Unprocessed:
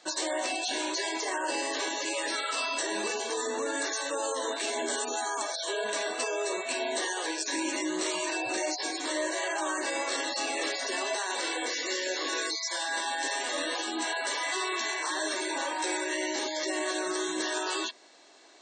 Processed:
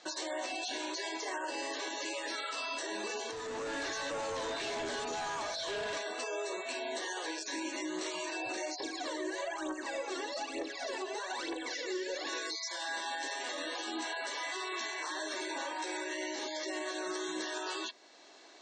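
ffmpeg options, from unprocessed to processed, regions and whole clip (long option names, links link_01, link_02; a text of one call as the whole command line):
ffmpeg -i in.wav -filter_complex "[0:a]asettb=1/sr,asplit=3[link_01][link_02][link_03];[link_01]atrim=end=3.314[link_04];[link_02]atrim=start=3.31:end=5.97,asetpts=PTS-STARTPTS,afade=type=in:duration=0.004:curve=qsin,afade=type=out:start_time=2.656:duration=0.004:curve=qsin,acrossover=split=5100[link_05][link_06];[link_06]acompressor=threshold=-44dB:ratio=4:attack=1:release=60[link_07];[link_05][link_07]amix=inputs=2:normalize=0,asoftclip=type=hard:threshold=-34.5dB[link_08];[link_03]atrim=start=5.966[link_09];[link_04][link_08]acrossfade=duration=0.004:curve1=hsin:curve2=qsin[link_10];[link_10][link_09]acrossfade=duration=0.004:curve1=qsin:curve2=hsin,asettb=1/sr,asplit=3[link_11][link_12][link_13];[link_11]atrim=end=8.804[link_14];[link_12]atrim=start=8.8:end=12.27,asetpts=PTS-STARTPTS,afade=type=in:duration=0.004:curve=qsin,afade=type=out:start_time=3.466:duration=0.004:curve=qsin,tiltshelf=frequency=650:gain=5.5,aphaser=in_gain=1:out_gain=1:delay=2.9:decay=0.75:speed=1.1:type=triangular[link_15];[link_13]atrim=start=12.266[link_16];[link_14][link_15]acrossfade=duration=0.004:curve1=hsin:curve2=qsin[link_17];[link_17][link_16]acrossfade=duration=0.004:curve1=qsin:curve2=hsin,lowpass=frequency=7100:width=0.5412,lowpass=frequency=7100:width=1.3066,alimiter=level_in=4.5dB:limit=-24dB:level=0:latency=1:release=476,volume=-4.5dB" out.wav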